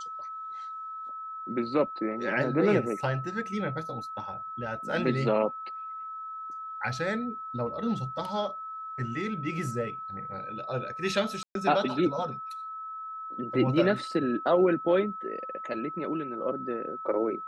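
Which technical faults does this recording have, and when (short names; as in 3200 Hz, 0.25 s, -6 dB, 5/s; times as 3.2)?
tone 1300 Hz -36 dBFS
11.43–11.55 gap 0.122 s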